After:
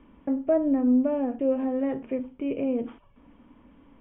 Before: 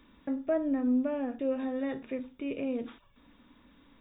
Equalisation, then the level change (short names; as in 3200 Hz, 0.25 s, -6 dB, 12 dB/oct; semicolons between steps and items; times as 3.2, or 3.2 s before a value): rippled Chebyshev low-pass 3200 Hz, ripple 3 dB; bell 2200 Hz -9.5 dB 2.1 oct; +9.0 dB